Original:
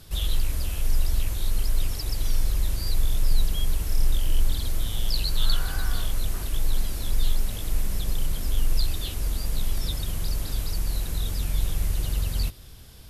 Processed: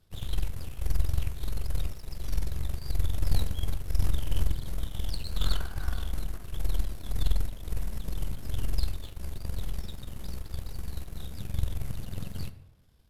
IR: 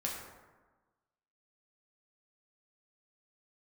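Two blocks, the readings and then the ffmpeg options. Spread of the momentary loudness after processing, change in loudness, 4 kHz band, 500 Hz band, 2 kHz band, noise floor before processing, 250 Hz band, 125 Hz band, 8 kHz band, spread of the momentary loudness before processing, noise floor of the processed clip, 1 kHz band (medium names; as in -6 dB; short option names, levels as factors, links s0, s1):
9 LU, -6.0 dB, -10.0 dB, -4.5 dB, -7.0 dB, -43 dBFS, -3.0 dB, -3.0 dB, -11.5 dB, 3 LU, -49 dBFS, -5.0 dB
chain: -filter_complex "[0:a]aeval=exprs='0.355*(cos(1*acos(clip(val(0)/0.355,-1,1)))-cos(1*PI/2))+0.141*(cos(3*acos(clip(val(0)/0.355,-1,1)))-cos(3*PI/2))+0.0891*(cos(4*acos(clip(val(0)/0.355,-1,1)))-cos(4*PI/2))':c=same,highshelf=f=2700:g=-8,asplit=2[s0][s1];[1:a]atrim=start_sample=2205,asetrate=52920,aresample=44100[s2];[s1][s2]afir=irnorm=-1:irlink=0,volume=0.398[s3];[s0][s3]amix=inputs=2:normalize=0,volume=0.562"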